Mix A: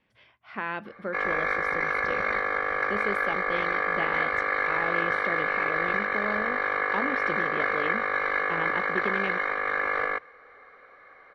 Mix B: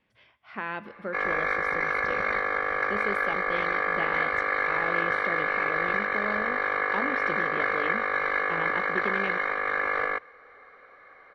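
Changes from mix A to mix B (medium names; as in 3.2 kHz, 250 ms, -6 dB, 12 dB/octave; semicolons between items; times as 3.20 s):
speech -3.0 dB; reverb: on, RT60 2.2 s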